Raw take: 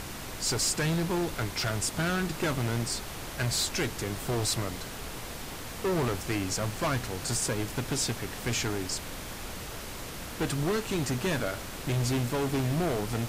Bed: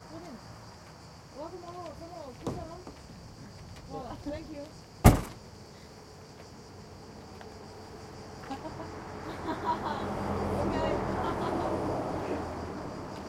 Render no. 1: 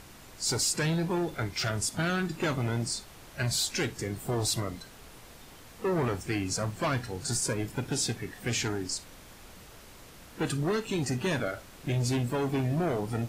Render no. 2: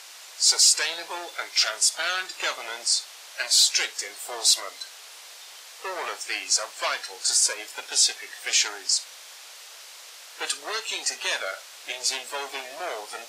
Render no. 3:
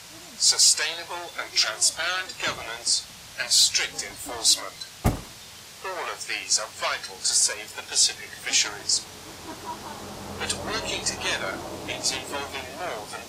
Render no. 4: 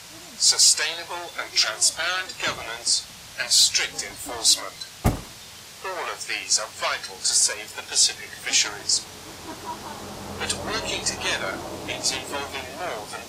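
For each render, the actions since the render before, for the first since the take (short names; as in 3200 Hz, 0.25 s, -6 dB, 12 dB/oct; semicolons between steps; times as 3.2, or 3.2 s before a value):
noise print and reduce 11 dB
HPF 540 Hz 24 dB/oct; bell 5000 Hz +12.5 dB 2.7 oct
add bed -5 dB
gain +1.5 dB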